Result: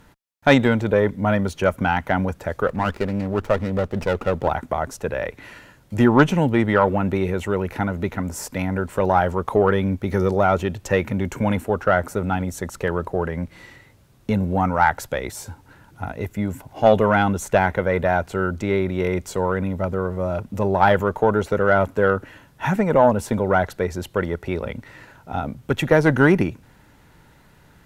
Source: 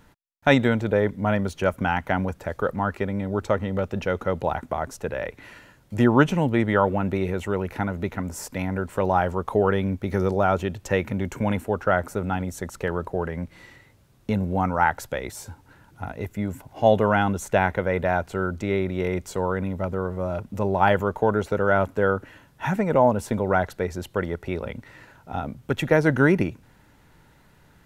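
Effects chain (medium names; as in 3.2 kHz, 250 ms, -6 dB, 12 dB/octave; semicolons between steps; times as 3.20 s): Chebyshev shaper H 5 -18 dB, 6 -26 dB, 7 -26 dB, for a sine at -2.5 dBFS; 2.67–4.48 s: sliding maximum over 9 samples; trim +1.5 dB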